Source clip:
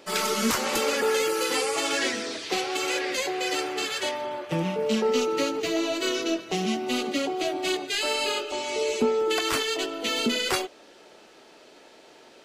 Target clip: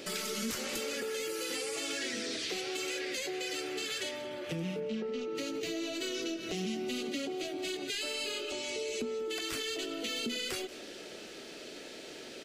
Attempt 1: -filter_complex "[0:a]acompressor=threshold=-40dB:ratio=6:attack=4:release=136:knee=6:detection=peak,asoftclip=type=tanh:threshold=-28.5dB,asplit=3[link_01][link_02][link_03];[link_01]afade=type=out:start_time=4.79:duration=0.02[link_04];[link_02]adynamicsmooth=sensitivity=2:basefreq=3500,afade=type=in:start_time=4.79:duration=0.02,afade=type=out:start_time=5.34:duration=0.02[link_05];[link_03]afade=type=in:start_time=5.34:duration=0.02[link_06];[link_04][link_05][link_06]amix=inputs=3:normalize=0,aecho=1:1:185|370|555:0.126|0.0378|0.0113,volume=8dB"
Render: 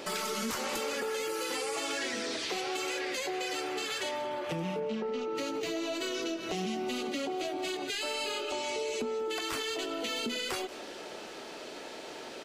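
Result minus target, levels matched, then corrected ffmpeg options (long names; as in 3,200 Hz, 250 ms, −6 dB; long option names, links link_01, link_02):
1,000 Hz band +7.5 dB
-filter_complex "[0:a]acompressor=threshold=-40dB:ratio=6:attack=4:release=136:knee=6:detection=peak,equalizer=frequency=940:width_type=o:width=1:gain=-13.5,asoftclip=type=tanh:threshold=-28.5dB,asplit=3[link_01][link_02][link_03];[link_01]afade=type=out:start_time=4.79:duration=0.02[link_04];[link_02]adynamicsmooth=sensitivity=2:basefreq=3500,afade=type=in:start_time=4.79:duration=0.02,afade=type=out:start_time=5.34:duration=0.02[link_05];[link_03]afade=type=in:start_time=5.34:duration=0.02[link_06];[link_04][link_05][link_06]amix=inputs=3:normalize=0,aecho=1:1:185|370|555:0.126|0.0378|0.0113,volume=8dB"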